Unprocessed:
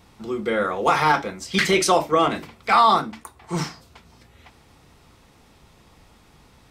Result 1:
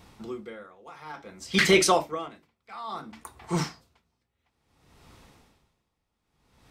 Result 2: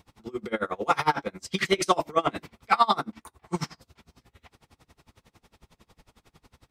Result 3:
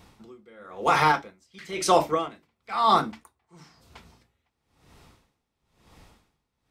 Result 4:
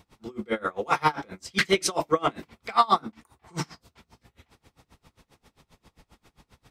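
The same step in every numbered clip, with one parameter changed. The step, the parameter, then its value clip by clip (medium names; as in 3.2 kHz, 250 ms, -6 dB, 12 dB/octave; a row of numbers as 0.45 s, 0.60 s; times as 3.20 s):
logarithmic tremolo, rate: 0.58 Hz, 11 Hz, 1 Hz, 7.5 Hz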